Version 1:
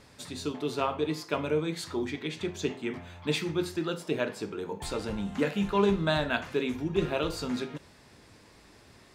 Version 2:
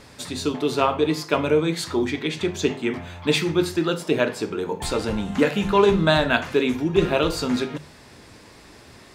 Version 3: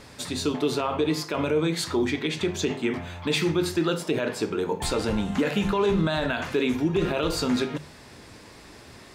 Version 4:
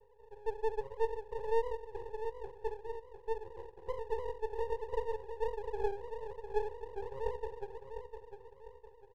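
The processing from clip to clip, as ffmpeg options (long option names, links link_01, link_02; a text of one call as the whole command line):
ffmpeg -i in.wav -af "bandreject=frequency=50:width_type=h:width=6,bandreject=frequency=100:width_type=h:width=6,bandreject=frequency=150:width_type=h:width=6,bandreject=frequency=200:width_type=h:width=6,volume=9dB" out.wav
ffmpeg -i in.wav -af "alimiter=limit=-15dB:level=0:latency=1:release=53" out.wav
ffmpeg -i in.wav -af "asuperpass=centerf=460:order=8:qfactor=4.5,aecho=1:1:702|1404|2106|2808:0.398|0.155|0.0606|0.0236,aeval=exprs='max(val(0),0)':channel_layout=same,volume=-1dB" out.wav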